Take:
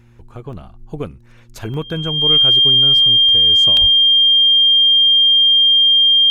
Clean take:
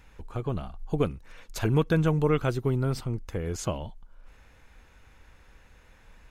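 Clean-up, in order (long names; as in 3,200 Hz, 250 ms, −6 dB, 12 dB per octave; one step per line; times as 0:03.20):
hum removal 117.7 Hz, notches 3
notch filter 3,200 Hz, Q 30
high-pass at the plosives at 0:03.80
repair the gap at 0:00.53/0:01.74/0:03.77, 1 ms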